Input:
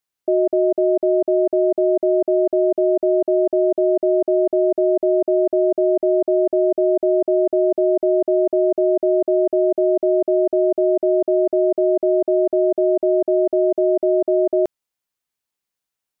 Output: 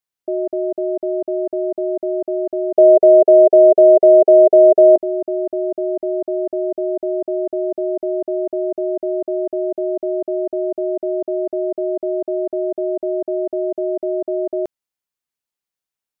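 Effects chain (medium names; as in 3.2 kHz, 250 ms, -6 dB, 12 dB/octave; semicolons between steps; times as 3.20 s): 2.78–4.96 s: high-order bell 570 Hz +15.5 dB 1.2 oct; trim -4 dB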